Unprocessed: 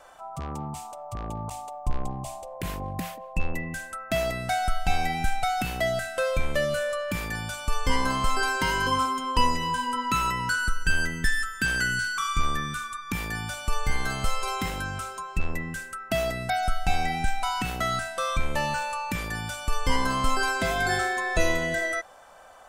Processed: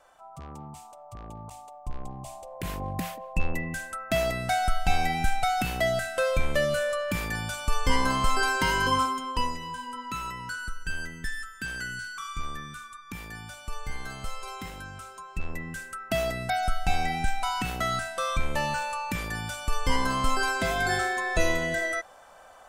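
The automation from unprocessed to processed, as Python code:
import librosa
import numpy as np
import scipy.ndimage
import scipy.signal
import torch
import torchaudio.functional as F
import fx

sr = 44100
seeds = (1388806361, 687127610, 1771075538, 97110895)

y = fx.gain(x, sr, db=fx.line((1.91, -8.0), (2.88, 0.5), (8.98, 0.5), (9.61, -9.0), (14.98, -9.0), (15.98, -1.0)))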